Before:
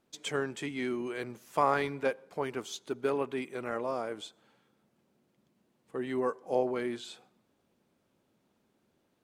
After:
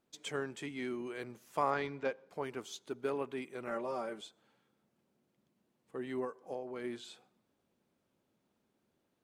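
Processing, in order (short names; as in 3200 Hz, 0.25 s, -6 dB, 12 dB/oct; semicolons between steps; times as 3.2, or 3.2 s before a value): 1.7–2.29 LPF 6800 Hz 24 dB/oct; 3.67–4.21 comb 5.2 ms, depth 77%; 6.24–6.84 compressor 6:1, threshold -32 dBFS, peak gain reduction 9.5 dB; gain -5.5 dB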